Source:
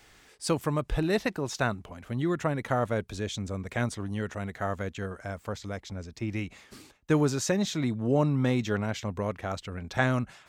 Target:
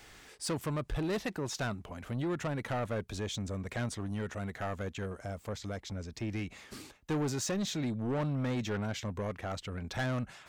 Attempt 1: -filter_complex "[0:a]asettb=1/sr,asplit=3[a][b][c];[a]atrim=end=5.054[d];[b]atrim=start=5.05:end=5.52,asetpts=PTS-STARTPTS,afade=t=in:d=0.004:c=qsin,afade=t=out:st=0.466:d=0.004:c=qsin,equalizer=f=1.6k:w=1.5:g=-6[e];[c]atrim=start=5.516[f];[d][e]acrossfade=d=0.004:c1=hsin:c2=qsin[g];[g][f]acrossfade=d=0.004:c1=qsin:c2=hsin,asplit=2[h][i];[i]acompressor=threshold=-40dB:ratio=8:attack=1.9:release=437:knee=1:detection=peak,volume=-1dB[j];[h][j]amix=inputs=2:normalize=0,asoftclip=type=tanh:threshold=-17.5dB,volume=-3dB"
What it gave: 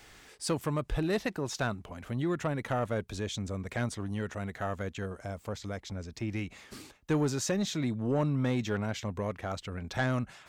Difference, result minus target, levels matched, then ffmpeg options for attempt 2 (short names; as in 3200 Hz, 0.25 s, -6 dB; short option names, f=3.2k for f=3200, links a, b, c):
soft clip: distortion -9 dB
-filter_complex "[0:a]asettb=1/sr,asplit=3[a][b][c];[a]atrim=end=5.054[d];[b]atrim=start=5.05:end=5.52,asetpts=PTS-STARTPTS,afade=t=in:d=0.004:c=qsin,afade=t=out:st=0.466:d=0.004:c=qsin,equalizer=f=1.6k:w=1.5:g=-6[e];[c]atrim=start=5.516[f];[d][e]acrossfade=d=0.004:c1=hsin:c2=qsin[g];[g][f]acrossfade=d=0.004:c1=qsin:c2=hsin,asplit=2[h][i];[i]acompressor=threshold=-40dB:ratio=8:attack=1.9:release=437:knee=1:detection=peak,volume=-1dB[j];[h][j]amix=inputs=2:normalize=0,asoftclip=type=tanh:threshold=-25.5dB,volume=-3dB"